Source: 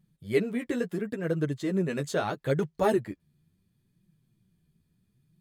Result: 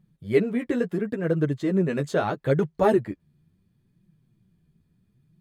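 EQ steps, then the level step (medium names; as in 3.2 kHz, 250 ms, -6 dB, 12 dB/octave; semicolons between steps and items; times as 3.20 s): treble shelf 3.2 kHz -10 dB; +5.0 dB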